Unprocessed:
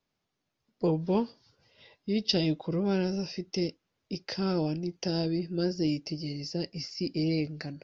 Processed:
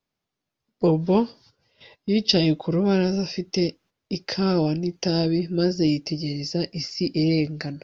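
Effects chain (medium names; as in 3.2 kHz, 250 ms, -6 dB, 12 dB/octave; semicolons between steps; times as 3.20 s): gate -58 dBFS, range -9 dB; trim +7.5 dB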